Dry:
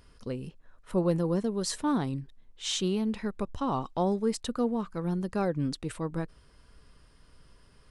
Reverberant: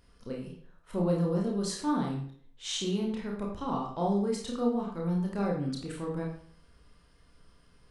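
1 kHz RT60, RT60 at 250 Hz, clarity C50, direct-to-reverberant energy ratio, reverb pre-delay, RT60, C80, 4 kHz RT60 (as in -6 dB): 0.55 s, 0.55 s, 4.5 dB, -2.0 dB, 25 ms, 0.55 s, 8.0 dB, 0.45 s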